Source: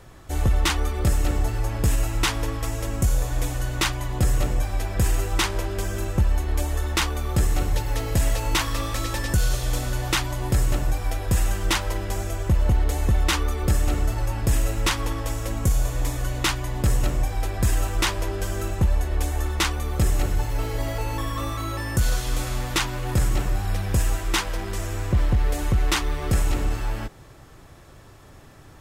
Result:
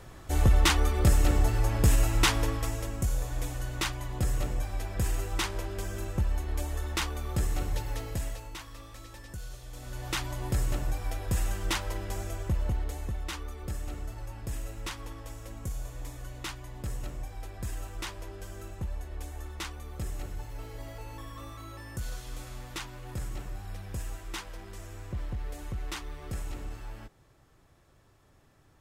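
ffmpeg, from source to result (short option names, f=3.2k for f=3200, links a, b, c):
-af "volume=11.5dB,afade=t=out:st=2.35:d=0.59:silence=0.446684,afade=t=out:st=7.85:d=0.67:silence=0.251189,afade=t=in:st=9.73:d=0.55:silence=0.237137,afade=t=out:st=12.32:d=0.86:silence=0.421697"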